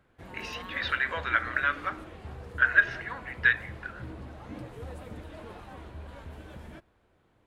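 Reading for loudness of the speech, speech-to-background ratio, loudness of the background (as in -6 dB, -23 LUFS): -27.0 LUFS, 17.0 dB, -44.0 LUFS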